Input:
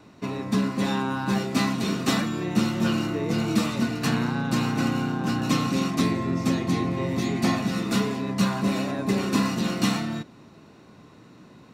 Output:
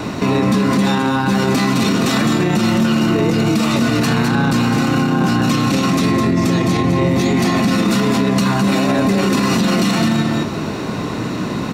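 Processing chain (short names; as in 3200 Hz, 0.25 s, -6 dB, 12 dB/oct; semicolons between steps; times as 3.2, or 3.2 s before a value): compressor, threshold -33 dBFS, peak gain reduction 16 dB; echo 0.21 s -8 dB; maximiser +33.5 dB; gain -6.5 dB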